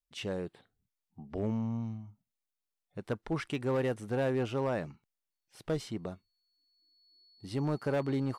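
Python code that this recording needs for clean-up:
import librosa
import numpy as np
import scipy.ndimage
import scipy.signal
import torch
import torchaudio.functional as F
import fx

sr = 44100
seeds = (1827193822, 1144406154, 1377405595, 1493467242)

y = fx.fix_declip(x, sr, threshold_db=-25.0)
y = fx.notch(y, sr, hz=4400.0, q=30.0)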